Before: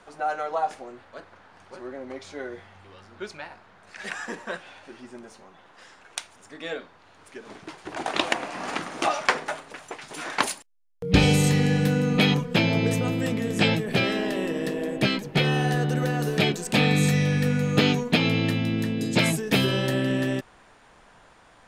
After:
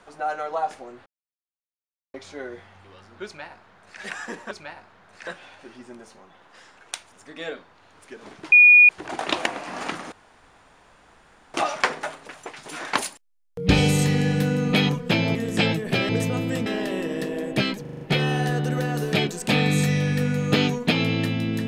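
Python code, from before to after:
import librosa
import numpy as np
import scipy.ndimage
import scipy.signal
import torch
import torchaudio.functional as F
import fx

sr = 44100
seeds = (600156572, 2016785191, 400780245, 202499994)

y = fx.edit(x, sr, fx.silence(start_s=1.06, length_s=1.08),
    fx.duplicate(start_s=3.25, length_s=0.76, to_s=4.51),
    fx.insert_tone(at_s=7.76, length_s=0.37, hz=2450.0, db=-8.0),
    fx.insert_room_tone(at_s=8.99, length_s=1.42),
    fx.move(start_s=12.8, length_s=0.57, to_s=14.11),
    fx.stutter(start_s=15.26, slice_s=0.04, count=6), tone=tone)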